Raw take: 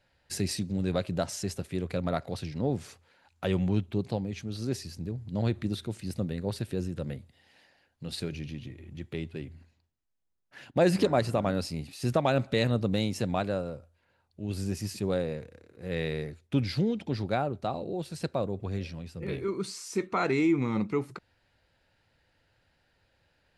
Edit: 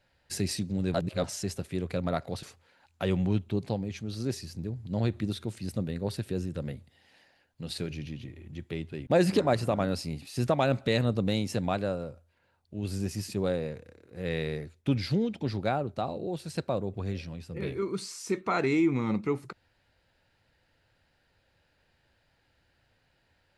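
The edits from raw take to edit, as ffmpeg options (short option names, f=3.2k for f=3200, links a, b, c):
-filter_complex "[0:a]asplit=5[a][b][c][d][e];[a]atrim=end=0.942[f];[b]atrim=start=0.938:end=1.242,asetpts=PTS-STARTPTS,areverse[g];[c]atrim=start=1.238:end=2.432[h];[d]atrim=start=2.848:end=9.492[i];[e]atrim=start=10.728[j];[f][g]acrossfade=d=0.004:c1=hsin:c2=hsin[k];[k][h]acrossfade=d=0.004:c1=hsin:c2=hsin[l];[l][i]acrossfade=d=0.004:c1=hsin:c2=hsin[m];[m][j]acrossfade=d=0.004:c1=hsin:c2=hsin"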